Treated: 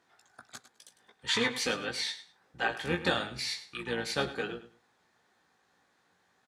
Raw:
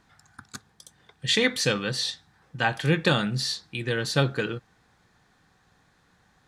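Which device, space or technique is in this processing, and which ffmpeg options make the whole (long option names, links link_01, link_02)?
octave pedal: -filter_complex "[0:a]highpass=290,asplit=2[link_01][link_02];[link_02]adelay=17,volume=-4.5dB[link_03];[link_01][link_03]amix=inputs=2:normalize=0,aecho=1:1:103|206:0.2|0.0419,asplit=2[link_04][link_05];[link_05]asetrate=22050,aresample=44100,atempo=2,volume=-7dB[link_06];[link_04][link_06]amix=inputs=2:normalize=0,volume=-7.5dB"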